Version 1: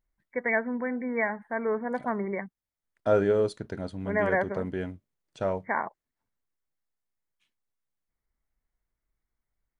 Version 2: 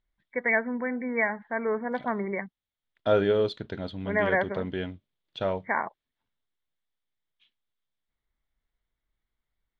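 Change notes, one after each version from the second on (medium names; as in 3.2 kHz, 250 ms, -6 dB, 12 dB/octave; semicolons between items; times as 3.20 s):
master: add resonant low-pass 3.5 kHz, resonance Q 4.5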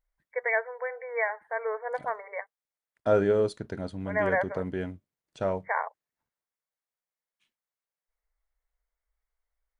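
first voice: add brick-wall FIR high-pass 430 Hz; master: remove resonant low-pass 3.5 kHz, resonance Q 4.5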